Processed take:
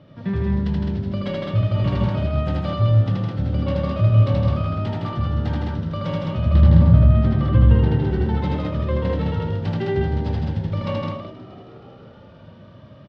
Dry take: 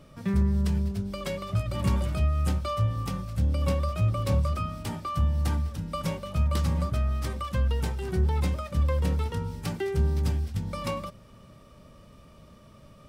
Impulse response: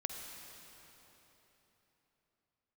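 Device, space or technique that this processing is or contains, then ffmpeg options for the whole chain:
frequency-shifting delay pedal into a guitar cabinet: -filter_complex "[0:a]bandreject=f=420:w=12,asettb=1/sr,asplit=3[s0][s1][s2];[s0]atrim=end=6.464[s3];[s1]atrim=start=6.46:end=8.03,asetpts=PTS-STARTPTS,afade=t=in:d=0.004:c=qsin,afade=t=out:st=1.566:d=0.004:c=qsin,aemphasis=mode=reproduction:type=bsi[s4];[s2]atrim=start=8.026[s5];[s3][s4]acrossfade=d=0.004:c1=hsin:c2=qsin[s6];[s6][s5]acrossfade=d=0.004:c1=qsin:c2=hsin,aecho=1:1:78.72|160.3|209.9:0.891|0.631|0.708,asplit=7[s7][s8][s9][s10][s11][s12][s13];[s8]adelay=317,afreqshift=77,volume=0.119[s14];[s9]adelay=634,afreqshift=154,volume=0.0733[s15];[s10]adelay=951,afreqshift=231,volume=0.0457[s16];[s11]adelay=1268,afreqshift=308,volume=0.0282[s17];[s12]adelay=1585,afreqshift=385,volume=0.0176[s18];[s13]adelay=1902,afreqshift=462,volume=0.0108[s19];[s7][s14][s15][s16][s17][s18][s19]amix=inputs=7:normalize=0,highpass=98,equalizer=f=110:t=q:w=4:g=7,equalizer=f=1200:t=q:w=4:g=-6,equalizer=f=2400:t=q:w=4:g=-7,lowpass=f=3700:w=0.5412,lowpass=f=3700:w=1.3066,volume=1.5"

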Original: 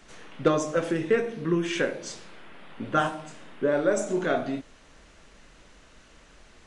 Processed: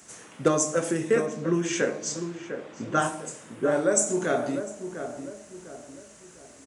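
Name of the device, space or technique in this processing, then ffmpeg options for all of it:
budget condenser microphone: -filter_complex "[0:a]asettb=1/sr,asplit=3[s0][s1][s2];[s0]atrim=end=1.264[s3];[s1]atrim=start=1.26:end=3.02,asetpts=PTS-STARTPTS,afade=t=in:d=0.004:c=qsin,afade=t=out:st=1.756:d=0.004:c=qsin,lowpass=f=7000:w=0.5412,lowpass=f=7000:w=1.3066[s4];[s2]atrim=start=3.016[s5];[s3][s4]acrossfade=d=0.004:c1=hsin:c2=qsin[s6];[s6][s5]acrossfade=d=0.004:c1=qsin:c2=hsin,highpass=f=71:w=0.5412,highpass=f=71:w=1.3066,highshelf=f=5400:t=q:w=1.5:g=12.5,asplit=2[s7][s8];[s8]adelay=701,lowpass=f=1400:p=1,volume=0.376,asplit=2[s9][s10];[s10]adelay=701,lowpass=f=1400:p=1,volume=0.41,asplit=2[s11][s12];[s12]adelay=701,lowpass=f=1400:p=1,volume=0.41,asplit=2[s13][s14];[s14]adelay=701,lowpass=f=1400:p=1,volume=0.41,asplit=2[s15][s16];[s16]adelay=701,lowpass=f=1400:p=1,volume=0.41[s17];[s7][s9][s11][s13][s15][s17]amix=inputs=6:normalize=0"

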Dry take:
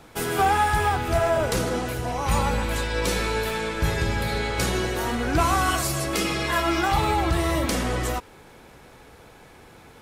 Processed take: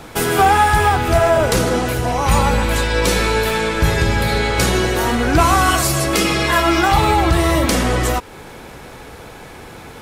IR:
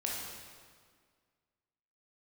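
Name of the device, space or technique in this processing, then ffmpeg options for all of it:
parallel compression: -filter_complex "[0:a]asplit=2[s0][s1];[s1]acompressor=threshold=0.02:ratio=6,volume=0.944[s2];[s0][s2]amix=inputs=2:normalize=0,volume=2.11"

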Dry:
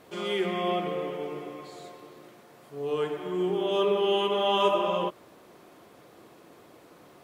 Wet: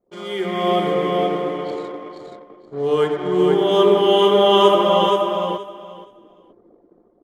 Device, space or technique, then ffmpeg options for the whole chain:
voice memo with heavy noise removal: -filter_complex "[0:a]asettb=1/sr,asplit=3[s0][s1][s2];[s0]atrim=end=1.244[s3];[s1]atrim=start=1.24:end=1.73,asetpts=PTS-STARTPTS,afade=t=in:d=0.004:c=qsin,afade=t=out:st=0.486:d=0.004:c=qsin,highpass=f=230:w=0.5412,highpass=f=230:w=1.3066[s4];[s2]atrim=start=1.726[s5];[s3][s4]acrossfade=d=0.004:c1=hsin:c2=qsin[s6];[s6][s5]acrossfade=d=0.004:c1=qsin:c2=hsin,anlmdn=0.0631,dynaudnorm=f=160:g=7:m=3.55,bandreject=f=2600:w=6,aecho=1:1:475|950|1425:0.631|0.107|0.0182"

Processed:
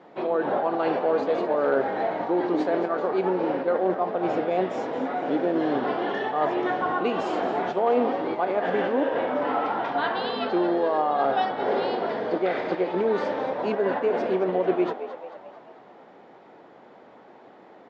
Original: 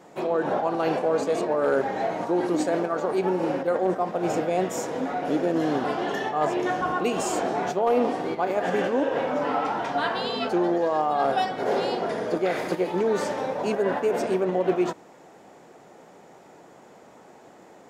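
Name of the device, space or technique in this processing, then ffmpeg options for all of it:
frequency-shifting delay pedal into a guitar cabinet: -filter_complex "[0:a]asplit=7[s0][s1][s2][s3][s4][s5][s6];[s1]adelay=220,afreqshift=73,volume=0.251[s7];[s2]adelay=440,afreqshift=146,volume=0.133[s8];[s3]adelay=660,afreqshift=219,volume=0.0708[s9];[s4]adelay=880,afreqshift=292,volume=0.0376[s10];[s5]adelay=1100,afreqshift=365,volume=0.0197[s11];[s6]adelay=1320,afreqshift=438,volume=0.0105[s12];[s0][s7][s8][s9][s10][s11][s12]amix=inputs=7:normalize=0,highpass=89,equalizer=f=100:t=q:w=4:g=-5,equalizer=f=160:t=q:w=4:g=-6,equalizer=f=2600:t=q:w=4:g=-3,lowpass=f=3900:w=0.5412,lowpass=f=3900:w=1.3066"

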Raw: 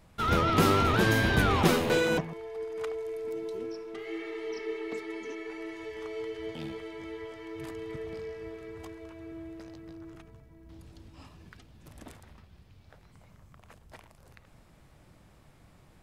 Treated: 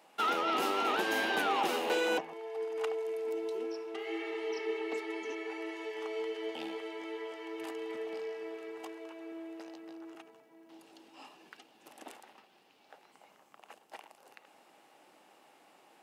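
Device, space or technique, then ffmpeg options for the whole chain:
laptop speaker: -af "highpass=f=300:w=0.5412,highpass=f=300:w=1.3066,equalizer=f=810:t=o:w=0.26:g=9.5,equalizer=f=2800:t=o:w=0.2:g=7.5,alimiter=limit=0.0891:level=0:latency=1:release=432"

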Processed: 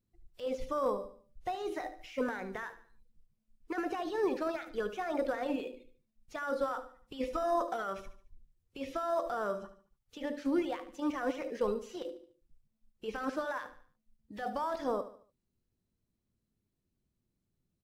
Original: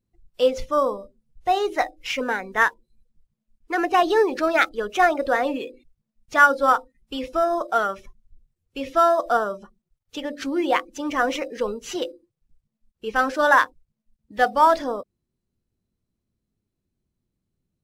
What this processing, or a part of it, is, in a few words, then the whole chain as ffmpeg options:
de-esser from a sidechain: -filter_complex "[0:a]asplit=2[s0][s1];[s1]highpass=4800,apad=whole_len=786538[s2];[s0][s2]sidechaincompress=threshold=0.00282:ratio=20:attack=0.84:release=22,asettb=1/sr,asplit=3[s3][s4][s5];[s3]atrim=end=7.204[s6];[s4]atrim=start=7.2:end=7.82,asetpts=PTS-STARTPTS,afade=t=in:d=0.004:c=qsin,afade=t=out:st=0.616:d=0.004:c=qsin,aecho=1:1:4:0.72,atrim=end_sample=27342[s7];[s5]atrim=start=7.816[s8];[s6][s7]acrossfade=d=0.004:c1=hsin:c2=qsin[s9];[s9][s8]acrossfade=d=0.004:c1=qsin:c2=hsin,aecho=1:1:73|146|219|292:0.224|0.0873|0.0341|0.0133,volume=0.631"

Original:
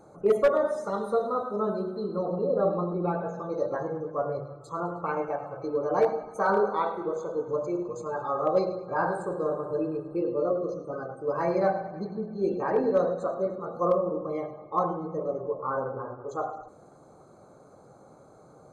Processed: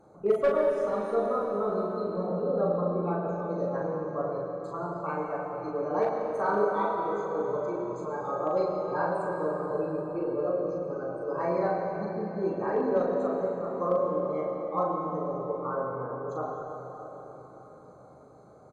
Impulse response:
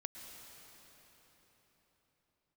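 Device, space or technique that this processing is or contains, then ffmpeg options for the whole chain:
swimming-pool hall: -filter_complex "[1:a]atrim=start_sample=2205[s0];[0:a][s0]afir=irnorm=-1:irlink=0,highshelf=f=5300:g=-8,asplit=2[s1][s2];[s2]adelay=39,volume=0.668[s3];[s1][s3]amix=inputs=2:normalize=0"

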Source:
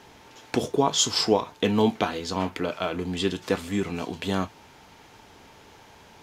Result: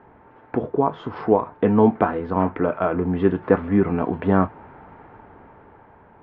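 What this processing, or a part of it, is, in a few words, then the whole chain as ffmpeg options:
action camera in a waterproof case: -af "lowpass=f=1600:w=0.5412,lowpass=f=1600:w=1.3066,dynaudnorm=f=420:g=7:m=3.35,volume=1.19" -ar 44100 -c:a aac -b:a 96k

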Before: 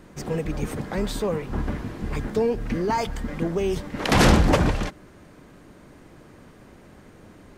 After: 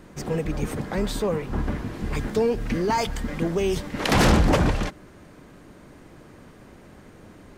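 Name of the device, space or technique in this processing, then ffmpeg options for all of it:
saturation between pre-emphasis and de-emphasis: -filter_complex "[0:a]highshelf=f=2500:g=10.5,asoftclip=type=tanh:threshold=0.316,highshelf=f=2500:g=-10.5,asplit=3[s0][s1][s2];[s0]afade=t=out:st=1.92:d=0.02[s3];[s1]adynamicequalizer=threshold=0.00891:dfrequency=2000:dqfactor=0.7:tfrequency=2000:tqfactor=0.7:attack=5:release=100:ratio=0.375:range=2:mode=boostabove:tftype=highshelf,afade=t=in:st=1.92:d=0.02,afade=t=out:st=4.11:d=0.02[s4];[s2]afade=t=in:st=4.11:d=0.02[s5];[s3][s4][s5]amix=inputs=3:normalize=0,volume=1.12"

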